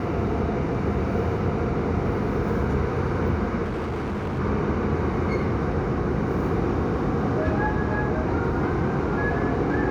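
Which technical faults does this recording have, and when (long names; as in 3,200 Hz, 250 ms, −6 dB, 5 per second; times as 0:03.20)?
0:03.63–0:04.40: clipping −25 dBFS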